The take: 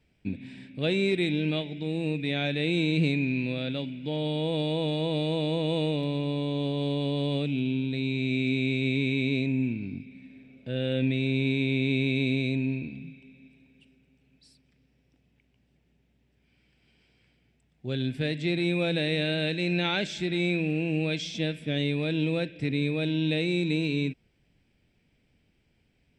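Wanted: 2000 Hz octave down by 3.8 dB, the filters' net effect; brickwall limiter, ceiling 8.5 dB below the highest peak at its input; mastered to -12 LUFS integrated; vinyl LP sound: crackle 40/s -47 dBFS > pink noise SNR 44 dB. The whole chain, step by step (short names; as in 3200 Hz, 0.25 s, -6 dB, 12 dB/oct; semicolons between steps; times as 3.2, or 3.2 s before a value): bell 2000 Hz -5 dB; limiter -24 dBFS; crackle 40/s -47 dBFS; pink noise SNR 44 dB; gain +21 dB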